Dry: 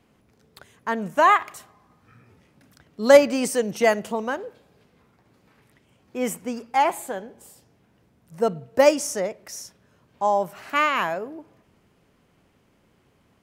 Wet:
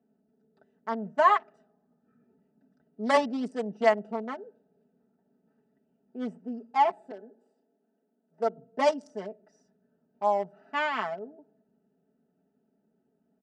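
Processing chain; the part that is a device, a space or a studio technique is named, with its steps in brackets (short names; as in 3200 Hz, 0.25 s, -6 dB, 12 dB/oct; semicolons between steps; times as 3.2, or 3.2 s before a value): Wiener smoothing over 41 samples; 7.11–8.58 HPF 250 Hz 24 dB/oct; full-range speaker at full volume (Doppler distortion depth 0.17 ms; speaker cabinet 260–6900 Hz, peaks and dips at 340 Hz -3 dB, 490 Hz -7 dB, 1600 Hz -4 dB, 2500 Hz -9 dB, 3800 Hz -6 dB, 6600 Hz -9 dB); comb 4.6 ms, depth 83%; gain -4.5 dB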